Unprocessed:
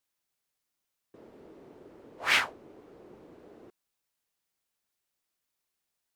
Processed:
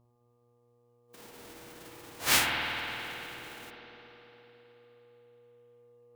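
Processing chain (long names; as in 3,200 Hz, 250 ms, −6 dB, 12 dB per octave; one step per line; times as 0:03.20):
spectral envelope flattened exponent 0.3
hum with harmonics 120 Hz, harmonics 10, −61 dBFS −6 dB per octave
spring reverb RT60 3.6 s, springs 52 ms, chirp 60 ms, DRR −0.5 dB
noise reduction from a noise print of the clip's start 8 dB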